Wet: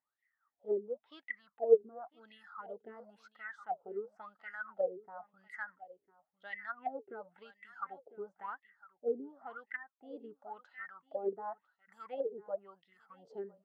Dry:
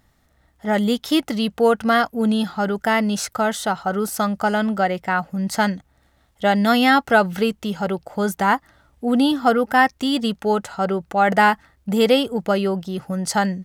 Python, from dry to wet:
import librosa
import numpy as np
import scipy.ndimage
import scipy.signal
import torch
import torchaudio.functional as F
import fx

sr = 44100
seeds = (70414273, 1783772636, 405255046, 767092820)

p1 = fx.low_shelf(x, sr, hz=270.0, db=-5.0)
p2 = p1 + fx.echo_single(p1, sr, ms=1000, db=-17.0, dry=0)
p3 = fx.wah_lfo(p2, sr, hz=0.95, low_hz=390.0, high_hz=2000.0, q=20.0)
p4 = fx.phaser_stages(p3, sr, stages=4, low_hz=400.0, high_hz=1900.0, hz=1.9, feedback_pct=30)
p5 = fx.env_lowpass_down(p4, sr, base_hz=520.0, full_db=-34.0)
p6 = fx.low_shelf(p5, sr, hz=110.0, db=-8.5)
p7 = fx.upward_expand(p6, sr, threshold_db=-43.0, expansion=1.5)
y = F.gain(torch.from_numpy(p7), 9.0).numpy()